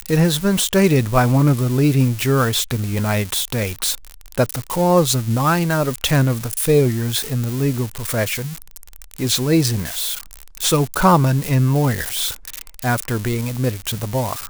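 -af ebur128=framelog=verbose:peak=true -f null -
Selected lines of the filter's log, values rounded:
Integrated loudness:
  I:         -18.5 LUFS
  Threshold: -28.8 LUFS
Loudness range:
  LRA:         3.7 LU
  Threshold: -38.9 LUFS
  LRA low:   -21.0 LUFS
  LRA high:  -17.2 LUFS
True peak:
  Peak:       -1.5 dBFS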